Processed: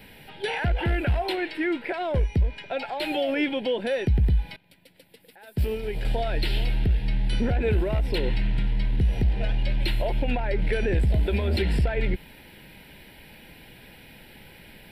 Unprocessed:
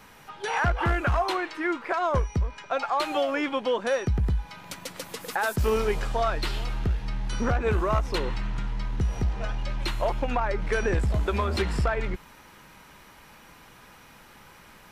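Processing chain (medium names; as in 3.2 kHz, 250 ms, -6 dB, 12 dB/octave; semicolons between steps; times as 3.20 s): peak limiter -21 dBFS, peak gain reduction 6 dB; static phaser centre 2.8 kHz, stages 4; 4.56–6.05 s: upward expansion 2.5:1, over -38 dBFS; trim +6 dB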